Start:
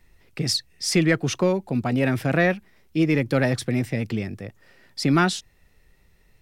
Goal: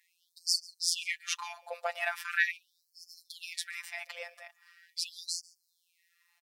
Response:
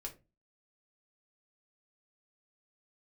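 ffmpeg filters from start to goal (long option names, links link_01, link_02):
-af "afftfilt=real='hypot(re,im)*cos(PI*b)':imag='0':win_size=1024:overlap=0.75,aecho=1:1:141:0.0708,afftfilt=real='re*gte(b*sr/1024,500*pow(4400/500,0.5+0.5*sin(2*PI*0.41*pts/sr)))':imag='im*gte(b*sr/1024,500*pow(4400/500,0.5+0.5*sin(2*PI*0.41*pts/sr)))':win_size=1024:overlap=0.75"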